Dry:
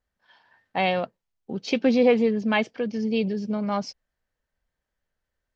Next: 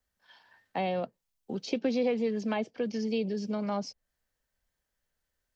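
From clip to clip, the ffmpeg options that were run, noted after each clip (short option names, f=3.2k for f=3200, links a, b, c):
-filter_complex "[0:a]highshelf=f=4k:g=10,acrossover=split=150|300|780[a][b][c][d];[a]acompressor=threshold=-48dB:ratio=4[e];[b]acompressor=threshold=-33dB:ratio=4[f];[c]acompressor=threshold=-27dB:ratio=4[g];[d]acompressor=threshold=-39dB:ratio=4[h];[e][f][g][h]amix=inputs=4:normalize=0,volume=-2.5dB"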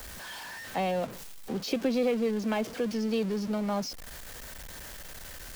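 -af "aeval=exprs='val(0)+0.5*0.015*sgn(val(0))':c=same"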